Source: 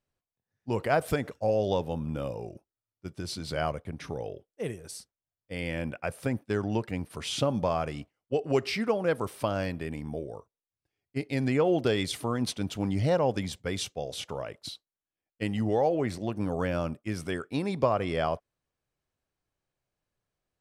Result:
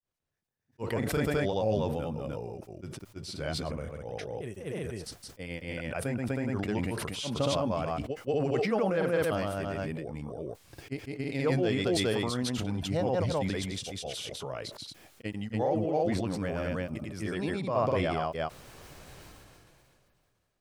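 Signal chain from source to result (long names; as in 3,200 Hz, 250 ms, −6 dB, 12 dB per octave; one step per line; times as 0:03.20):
granular cloud 163 ms, grains 18 per second, spray 247 ms, pitch spread up and down by 0 semitones
level that may fall only so fast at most 23 dB per second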